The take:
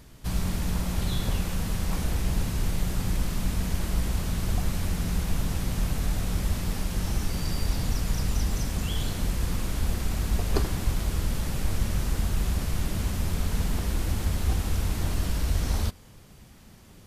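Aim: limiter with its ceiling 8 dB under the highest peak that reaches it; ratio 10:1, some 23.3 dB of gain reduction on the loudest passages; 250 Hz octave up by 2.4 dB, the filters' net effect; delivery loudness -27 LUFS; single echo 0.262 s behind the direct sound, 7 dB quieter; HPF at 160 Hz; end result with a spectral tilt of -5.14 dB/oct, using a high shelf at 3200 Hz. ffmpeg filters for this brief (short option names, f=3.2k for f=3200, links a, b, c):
-af "highpass=160,equalizer=f=250:t=o:g=5.5,highshelf=f=3.2k:g=-5.5,acompressor=threshold=-46dB:ratio=10,alimiter=level_in=18dB:limit=-24dB:level=0:latency=1,volume=-18dB,aecho=1:1:262:0.447,volume=23.5dB"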